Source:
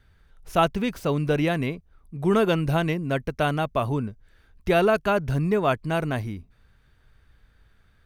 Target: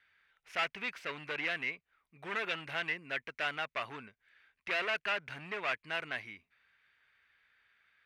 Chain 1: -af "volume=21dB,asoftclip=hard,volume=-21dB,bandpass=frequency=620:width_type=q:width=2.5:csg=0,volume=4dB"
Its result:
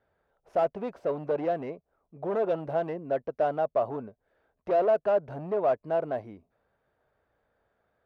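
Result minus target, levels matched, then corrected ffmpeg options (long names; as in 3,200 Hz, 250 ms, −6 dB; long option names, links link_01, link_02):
2,000 Hz band −18.5 dB
-af "volume=21dB,asoftclip=hard,volume=-21dB,bandpass=frequency=2200:width_type=q:width=2.5:csg=0,volume=4dB"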